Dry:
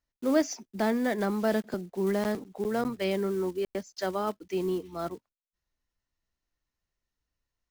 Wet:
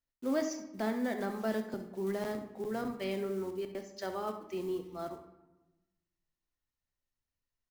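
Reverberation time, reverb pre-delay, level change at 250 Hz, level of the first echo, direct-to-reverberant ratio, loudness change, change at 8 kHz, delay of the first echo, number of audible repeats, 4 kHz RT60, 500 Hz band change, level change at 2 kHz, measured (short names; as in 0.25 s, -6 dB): 1.0 s, 7 ms, -6.5 dB, -12.5 dB, 5.5 dB, -6.5 dB, -7.0 dB, 68 ms, 1, 0.65 s, -6.5 dB, -6.5 dB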